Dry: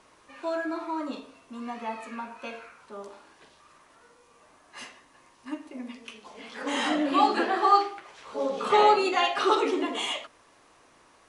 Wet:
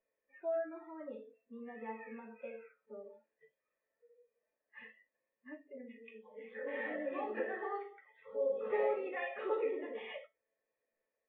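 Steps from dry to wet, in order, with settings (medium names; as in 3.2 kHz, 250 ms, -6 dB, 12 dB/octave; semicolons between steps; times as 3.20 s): cascade formant filter e; in parallel at +2.5 dB: compression 6:1, threshold -52 dBFS, peak gain reduction 22.5 dB; on the sum: spectral noise reduction 23 dB; feedback comb 220 Hz, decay 0.2 s, harmonics all, mix 80%; trim +8 dB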